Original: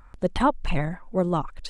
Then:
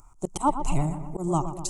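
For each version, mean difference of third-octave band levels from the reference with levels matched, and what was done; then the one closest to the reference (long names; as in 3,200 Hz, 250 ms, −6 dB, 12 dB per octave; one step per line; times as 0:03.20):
9.0 dB: phaser with its sweep stopped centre 340 Hz, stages 8
feedback echo with a low-pass in the loop 121 ms, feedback 68%, low-pass 2,100 Hz, level −11 dB
volume swells 109 ms
high shelf with overshoot 5,300 Hz +10 dB, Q 3
level +1.5 dB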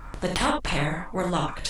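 12.0 dB: de-essing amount 60%
low-shelf EQ 180 Hz +5 dB
reverb whose tail is shaped and stops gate 100 ms flat, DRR 1 dB
every bin compressed towards the loudest bin 2 to 1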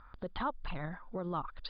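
5.0 dB: brickwall limiter −18.5 dBFS, peak gain reduction 9 dB
downward compressor 1.5 to 1, threshold −34 dBFS, peak gain reduction 4.5 dB
Chebyshev low-pass with heavy ripple 4,900 Hz, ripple 9 dB
level +1.5 dB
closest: third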